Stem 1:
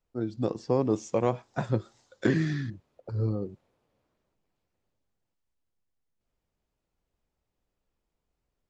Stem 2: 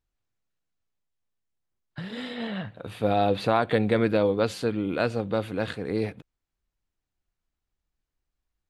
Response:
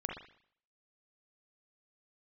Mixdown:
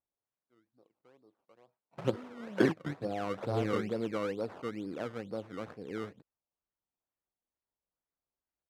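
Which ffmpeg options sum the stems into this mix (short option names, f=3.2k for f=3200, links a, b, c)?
-filter_complex "[0:a]acontrast=27,adelay=350,volume=-2dB[a];[1:a]equalizer=f=1.3k:t=o:w=2.7:g=-15,volume=-3dB,asplit=2[b][c];[c]apad=whole_len=399051[d];[a][d]sidechaingate=range=-38dB:threshold=-43dB:ratio=16:detection=peak[e];[e][b]amix=inputs=2:normalize=0,acrusher=samples=18:mix=1:aa=0.000001:lfo=1:lforange=18:lforate=2.2,bandpass=f=760:t=q:w=0.57:csg=0"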